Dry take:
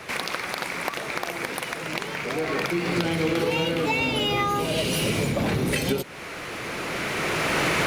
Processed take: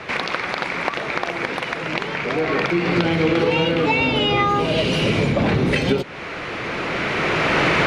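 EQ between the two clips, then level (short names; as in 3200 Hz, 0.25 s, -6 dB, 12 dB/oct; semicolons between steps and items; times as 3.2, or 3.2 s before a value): LPF 3800 Hz 12 dB/oct; +6.0 dB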